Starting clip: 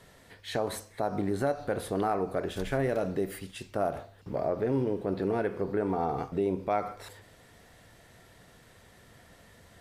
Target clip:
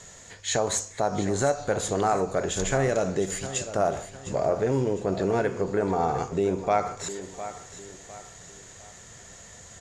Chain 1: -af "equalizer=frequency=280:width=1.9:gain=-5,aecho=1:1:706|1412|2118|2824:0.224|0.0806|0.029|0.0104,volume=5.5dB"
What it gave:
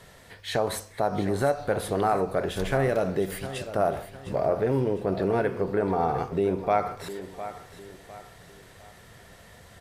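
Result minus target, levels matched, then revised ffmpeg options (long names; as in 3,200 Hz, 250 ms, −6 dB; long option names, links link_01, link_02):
8,000 Hz band −11.5 dB
-af "lowpass=frequency=6900:width_type=q:width=16,equalizer=frequency=280:width=1.9:gain=-5,aecho=1:1:706|1412|2118|2824:0.224|0.0806|0.029|0.0104,volume=5.5dB"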